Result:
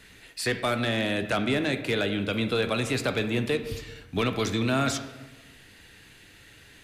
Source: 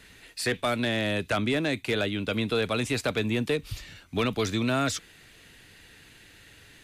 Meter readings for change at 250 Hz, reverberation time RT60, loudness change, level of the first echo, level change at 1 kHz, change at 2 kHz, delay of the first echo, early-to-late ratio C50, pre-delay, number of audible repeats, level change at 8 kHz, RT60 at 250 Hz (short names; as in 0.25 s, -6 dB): +0.5 dB, 1.1 s, +0.5 dB, none, +1.0 dB, +1.0 dB, none, 10.0 dB, 9 ms, none, 0.0 dB, 1.2 s